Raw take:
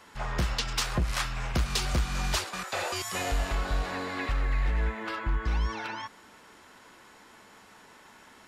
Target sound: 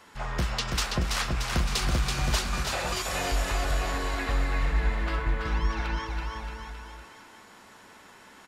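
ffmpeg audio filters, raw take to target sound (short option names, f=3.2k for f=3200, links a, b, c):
-af "aecho=1:1:330|627|894.3|1135|1351:0.631|0.398|0.251|0.158|0.1"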